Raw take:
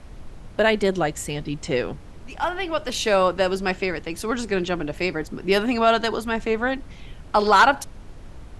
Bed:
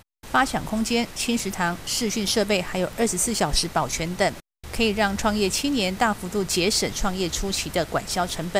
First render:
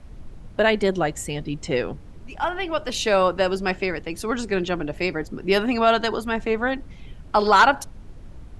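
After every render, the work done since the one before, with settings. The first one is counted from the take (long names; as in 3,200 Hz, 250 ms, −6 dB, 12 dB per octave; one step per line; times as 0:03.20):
broadband denoise 6 dB, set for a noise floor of −42 dBFS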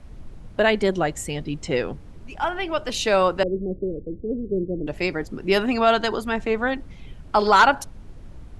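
0:03.43–0:04.87: Butterworth low-pass 530 Hz 48 dB per octave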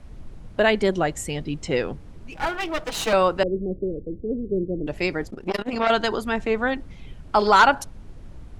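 0:02.32–0:03.13: lower of the sound and its delayed copy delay 6.2 ms
0:05.30–0:05.90: saturating transformer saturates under 910 Hz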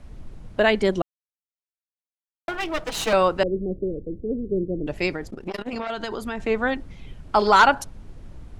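0:01.02–0:02.48: silence
0:05.13–0:06.40: downward compressor, threshold −25 dBFS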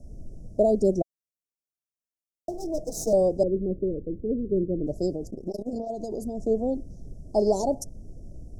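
Chebyshev band-stop filter 670–5,500 Hz, order 4
parametric band 11,000 Hz −2.5 dB 0.42 octaves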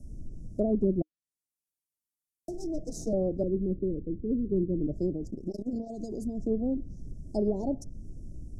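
drawn EQ curve 310 Hz 0 dB, 470 Hz −8 dB, 1,400 Hz −17 dB, 10,000 Hz +5 dB
treble cut that deepens with the level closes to 490 Hz, closed at −21 dBFS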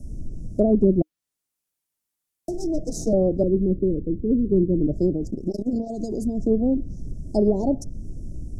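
level +8.5 dB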